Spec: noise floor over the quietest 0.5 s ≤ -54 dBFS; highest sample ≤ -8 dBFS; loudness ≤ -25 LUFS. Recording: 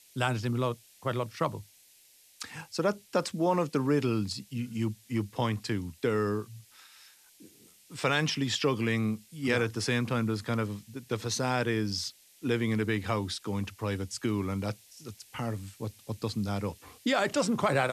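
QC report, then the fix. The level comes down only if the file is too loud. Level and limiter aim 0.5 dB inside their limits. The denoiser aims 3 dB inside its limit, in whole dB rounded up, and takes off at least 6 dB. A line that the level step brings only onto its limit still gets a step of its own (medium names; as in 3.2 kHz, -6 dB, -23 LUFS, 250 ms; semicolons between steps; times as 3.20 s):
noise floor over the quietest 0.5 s -60 dBFS: pass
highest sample -14.0 dBFS: pass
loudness -31.0 LUFS: pass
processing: none needed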